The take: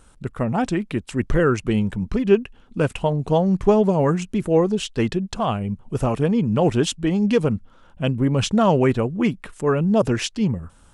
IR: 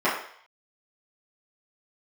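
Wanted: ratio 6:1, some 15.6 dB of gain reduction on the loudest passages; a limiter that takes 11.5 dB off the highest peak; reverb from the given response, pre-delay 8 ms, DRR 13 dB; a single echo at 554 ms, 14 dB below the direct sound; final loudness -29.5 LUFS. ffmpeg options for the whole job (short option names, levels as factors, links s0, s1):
-filter_complex "[0:a]acompressor=threshold=0.0398:ratio=6,alimiter=level_in=1.78:limit=0.0631:level=0:latency=1,volume=0.562,aecho=1:1:554:0.2,asplit=2[s0][s1];[1:a]atrim=start_sample=2205,adelay=8[s2];[s1][s2]afir=irnorm=-1:irlink=0,volume=0.0316[s3];[s0][s3]amix=inputs=2:normalize=0,volume=2.51"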